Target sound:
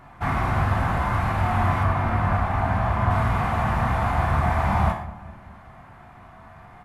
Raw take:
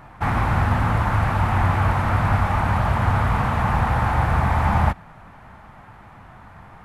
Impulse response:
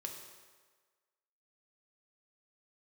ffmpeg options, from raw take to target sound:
-filter_complex "[0:a]asettb=1/sr,asplit=3[link_01][link_02][link_03];[link_01]atrim=end=1.834[link_04];[link_02]atrim=start=1.83:end=3.11,asetpts=PTS-STARTPTS,afade=type=in:duration=0.004:curve=qsin,afade=type=out:start_time=1.276:duration=0.004:curve=qsin,highshelf=frequency=3700:gain=-8.5[link_05];[link_03]atrim=start=3.106[link_06];[link_04][link_05]acrossfade=duration=0.004:curve1=hsin:curve2=qsin[link_07];[link_07][link_06]acrossfade=duration=0.004:curve1=qsin:curve2=hsin,asplit=2[link_08][link_09];[link_09]adelay=209,lowpass=frequency=1100:poles=1,volume=-15dB,asplit=2[link_10][link_11];[link_11]adelay=209,lowpass=frequency=1100:poles=1,volume=0.53,asplit=2[link_12][link_13];[link_13]adelay=209,lowpass=frequency=1100:poles=1,volume=0.53,asplit=2[link_14][link_15];[link_15]adelay=209,lowpass=frequency=1100:poles=1,volume=0.53,asplit=2[link_16][link_17];[link_17]adelay=209,lowpass=frequency=1100:poles=1,volume=0.53[link_18];[link_08][link_10][link_12][link_14][link_16][link_18]amix=inputs=6:normalize=0[link_19];[1:a]atrim=start_sample=2205,afade=type=out:start_time=0.34:duration=0.01,atrim=end_sample=15435,asetrate=83790,aresample=44100[link_20];[link_19][link_20]afir=irnorm=-1:irlink=0,volume=5.5dB"

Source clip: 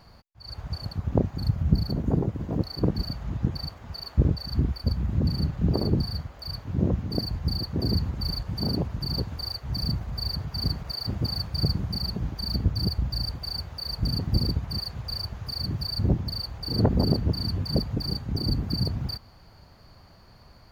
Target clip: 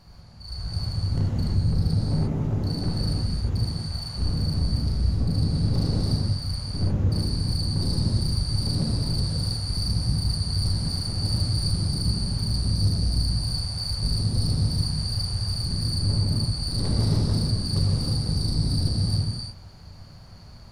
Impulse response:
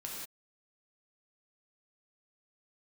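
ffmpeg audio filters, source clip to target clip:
-filter_complex "[0:a]aeval=exprs='(tanh(28.2*val(0)+0.35)-tanh(0.35))/28.2':channel_layout=same,bass=frequency=250:gain=8,treble=frequency=4000:gain=8[link_01];[1:a]atrim=start_sample=2205,asetrate=24255,aresample=44100[link_02];[link_01][link_02]afir=irnorm=-1:irlink=0,volume=-2dB"

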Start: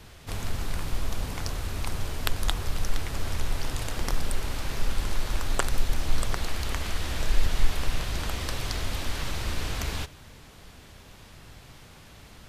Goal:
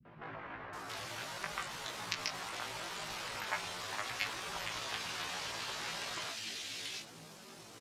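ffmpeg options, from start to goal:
ffmpeg -i in.wav -filter_complex "[0:a]highpass=140,lowpass=7700,acrossover=split=490[link_01][link_02];[link_01]acompressor=threshold=-49dB:ratio=12[link_03];[link_03][link_02]amix=inputs=2:normalize=0,atempo=1.6,flanger=delay=7.7:depth=9.8:regen=-32:speed=0.67:shape=sinusoidal,asetrate=68011,aresample=44100,atempo=0.64842,asplit=2[link_04][link_05];[link_05]adelay=18,volume=-5dB[link_06];[link_04][link_06]amix=inputs=2:normalize=0,acrossover=split=200|2000[link_07][link_08][link_09];[link_08]adelay=50[link_10];[link_09]adelay=730[link_11];[link_07][link_10][link_11]amix=inputs=3:normalize=0,acrossover=split=5000[link_12][link_13];[link_13]acompressor=threshold=-55dB:ratio=4:attack=1:release=60[link_14];[link_12][link_14]amix=inputs=2:normalize=0,volume=3.5dB" -ar 32000 -c:a libvorbis -b:a 96k out.ogg

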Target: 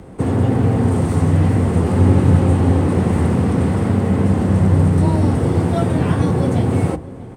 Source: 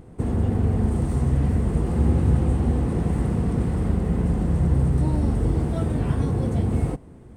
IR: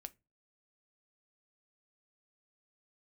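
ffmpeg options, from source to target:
-filter_complex "[0:a]lowshelf=frequency=410:gain=-6.5,asplit=2[link_01][link_02];[link_02]adelay=641.4,volume=-18dB,highshelf=frequency=4000:gain=-14.4[link_03];[link_01][link_03]amix=inputs=2:normalize=0,asplit=2[link_04][link_05];[1:a]atrim=start_sample=2205,highshelf=frequency=7100:gain=-7[link_06];[link_05][link_06]afir=irnorm=-1:irlink=0,volume=12dB[link_07];[link_04][link_07]amix=inputs=2:normalize=0,afreqshift=22,volume=2dB"

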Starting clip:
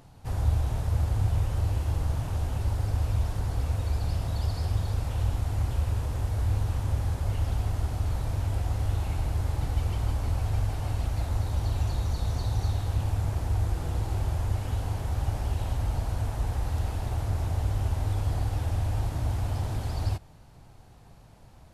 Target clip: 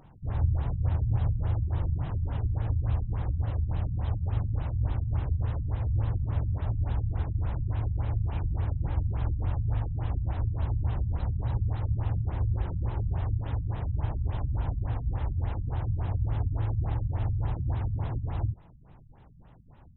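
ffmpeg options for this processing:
ffmpeg -i in.wav -af "asetrate=48000,aresample=44100,afftfilt=real='re*lt(b*sr/1024,210*pow(4100/210,0.5+0.5*sin(2*PI*3.5*pts/sr)))':imag='im*lt(b*sr/1024,210*pow(4100/210,0.5+0.5*sin(2*PI*3.5*pts/sr)))':win_size=1024:overlap=0.75,volume=-1dB" out.wav

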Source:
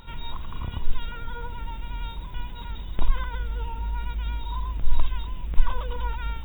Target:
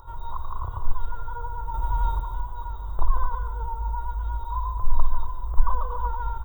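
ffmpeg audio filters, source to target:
ffmpeg -i in.wav -filter_complex "[0:a]firequalizer=gain_entry='entry(120,0);entry(180,-27);entry(340,-4);entry(1100,8);entry(1700,-13);entry(2400,-30);entry(5200,1)':delay=0.05:min_phase=1,asettb=1/sr,asplit=3[link_01][link_02][link_03];[link_01]atrim=end=1.744[link_04];[link_02]atrim=start=1.74:end=2.2,asetpts=PTS-STARTPTS,afade=type=in:duration=0.004:curve=qsin,afade=type=out:start_time=0.456:duration=0.004:curve=qsin,acontrast=84[link_05];[link_03]atrim=start=2.196[link_06];[link_04][link_05]acrossfade=duration=0.004:curve1=hsin:curve2=qsin[link_07];[link_07][link_06]acrossfade=duration=0.004:curve1=qsin:curve2=hsin,aecho=1:1:145.8|233.2:0.355|0.282" out.wav

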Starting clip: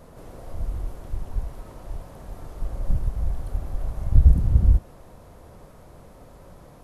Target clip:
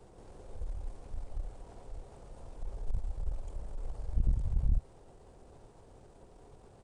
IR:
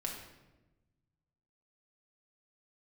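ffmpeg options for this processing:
-filter_complex "[0:a]aeval=exprs='if(lt(val(0),0),0.708*val(0),val(0))':channel_layout=same,acrossover=split=220|500[link_01][link_02][link_03];[link_02]acompressor=threshold=-55dB:ratio=6[link_04];[link_01][link_04][link_03]amix=inputs=3:normalize=0,aeval=exprs='(tanh(7.94*val(0)+0.65)-tanh(0.65))/7.94':channel_layout=same,equalizer=frequency=1000:width_type=o:width=1.3:gain=3.5,asetrate=33038,aresample=44100,atempo=1.33484,volume=-4dB"

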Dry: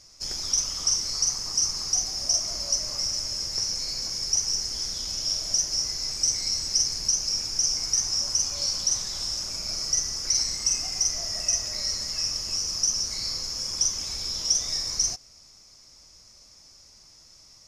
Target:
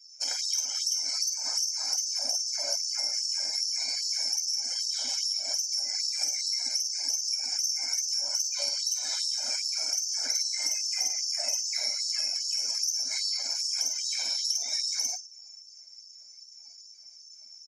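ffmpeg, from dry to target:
ffmpeg -i in.wav -af "aecho=1:1:1.3:0.95,acompressor=threshold=-30dB:ratio=10,equalizer=frequency=250:width_type=o:width=0.33:gain=5,equalizer=frequency=2000:width_type=o:width=0.33:gain=7,equalizer=frequency=5000:width_type=o:width=0.33:gain=-5,aeval=exprs='(tanh(17.8*val(0)+0.5)-tanh(0.5))/17.8':channel_layout=same,aecho=1:1:49|109:0.473|0.299,afftdn=noise_reduction=24:noise_floor=-50,bandreject=frequency=50.55:width_type=h:width=4,bandreject=frequency=101.1:width_type=h:width=4,bandreject=frequency=151.65:width_type=h:width=4,bandreject=frequency=202.2:width_type=h:width=4,bandreject=frequency=252.75:width_type=h:width=4,bandreject=frequency=303.3:width_type=h:width=4,bandreject=frequency=353.85:width_type=h:width=4,bandreject=frequency=404.4:width_type=h:width=4,bandreject=frequency=454.95:width_type=h:width=4,bandreject=frequency=505.5:width_type=h:width=4,bandreject=frequency=556.05:width_type=h:width=4,bandreject=frequency=606.6:width_type=h:width=4,bandreject=frequency=657.15:width_type=h:width=4,bandreject=frequency=707.7:width_type=h:width=4,bandreject=frequency=758.25:width_type=h:width=4,bandreject=frequency=808.8:width_type=h:width=4,bandreject=frequency=859.35:width_type=h:width=4,bandreject=frequency=909.9:width_type=h:width=4,bandreject=frequency=960.45:width_type=h:width=4,afftfilt=real='re*gte(b*sr/1024,240*pow(3900/240,0.5+0.5*sin(2*PI*2.5*pts/sr)))':imag='im*gte(b*sr/1024,240*pow(3900/240,0.5+0.5*sin(2*PI*2.5*pts/sr)))':win_size=1024:overlap=0.75,volume=8dB" out.wav

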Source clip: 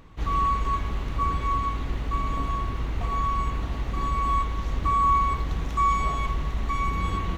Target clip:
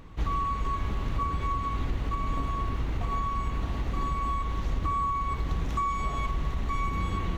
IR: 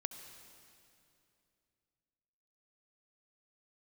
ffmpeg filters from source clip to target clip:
-filter_complex "[0:a]acompressor=threshold=-26dB:ratio=6,asplit=2[link_01][link_02];[1:a]atrim=start_sample=2205,asetrate=70560,aresample=44100,lowshelf=frequency=440:gain=5.5[link_03];[link_02][link_03]afir=irnorm=-1:irlink=0,volume=2.5dB[link_04];[link_01][link_04]amix=inputs=2:normalize=0,volume=-4dB"

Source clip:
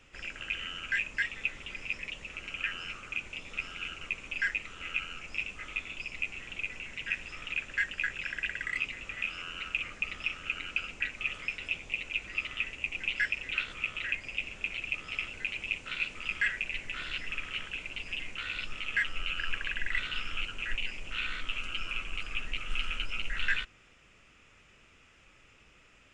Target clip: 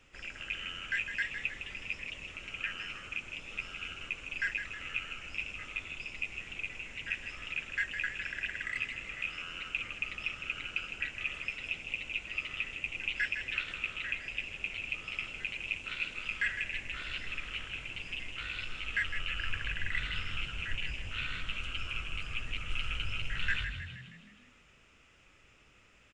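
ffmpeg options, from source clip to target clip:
ffmpeg -i in.wav -filter_complex "[0:a]asplit=7[link_01][link_02][link_03][link_04][link_05][link_06][link_07];[link_02]adelay=158,afreqshift=40,volume=-8.5dB[link_08];[link_03]adelay=316,afreqshift=80,volume=-14dB[link_09];[link_04]adelay=474,afreqshift=120,volume=-19.5dB[link_10];[link_05]adelay=632,afreqshift=160,volume=-25dB[link_11];[link_06]adelay=790,afreqshift=200,volume=-30.6dB[link_12];[link_07]adelay=948,afreqshift=240,volume=-36.1dB[link_13];[link_01][link_08][link_09][link_10][link_11][link_12][link_13]amix=inputs=7:normalize=0,volume=-3dB" out.wav

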